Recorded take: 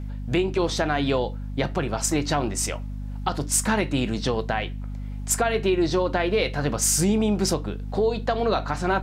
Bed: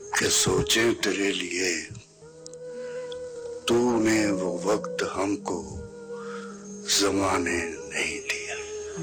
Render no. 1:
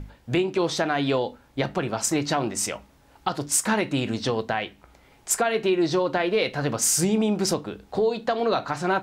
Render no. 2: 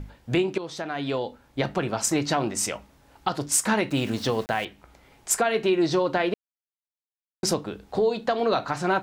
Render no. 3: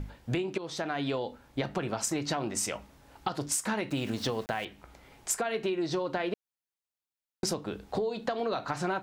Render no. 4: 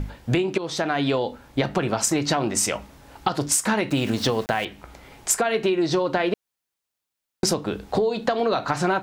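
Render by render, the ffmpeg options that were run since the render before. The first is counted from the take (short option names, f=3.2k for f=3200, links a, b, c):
-af "bandreject=f=50:t=h:w=6,bandreject=f=100:t=h:w=6,bandreject=f=150:t=h:w=6,bandreject=f=200:t=h:w=6,bandreject=f=250:t=h:w=6"
-filter_complex "[0:a]asettb=1/sr,asplit=3[a][b][c];[a]atrim=end=3.904[d];[b]atrim=start=3.9:end=4.65,asetpts=PTS-STARTPTS,afade=t=in:d=0.004:c=qsin,afade=t=out:st=0.746:d=0.004:c=qsin,aeval=exprs='val(0)*gte(abs(val(0)),0.0119)':c=same[e];[c]atrim=start=4.646[f];[d][e]acrossfade=d=0.004:c1=hsin:c2=qsin[g];[g][f]acrossfade=d=0.004:c1=qsin:c2=hsin,asplit=4[h][i][j][k];[h]atrim=end=0.58,asetpts=PTS-STARTPTS,afade=t=out:st=0.576:d=0.004:c=hsin:silence=0.223872[l];[i]atrim=start=0.58:end=6.34,asetpts=PTS-STARTPTS,afade=t=in:d=1.1:silence=0.223872,afade=t=out:st=5.756:d=0.004:c=hsin[m];[j]atrim=start=6.34:end=7.43,asetpts=PTS-STARTPTS,volume=0[n];[k]atrim=start=7.43,asetpts=PTS-STARTPTS,afade=t=in:d=0.004:c=hsin[o];[l][m][n][o]concat=n=4:v=0:a=1"
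-af "acompressor=threshold=-28dB:ratio=6"
-af "volume=9dB"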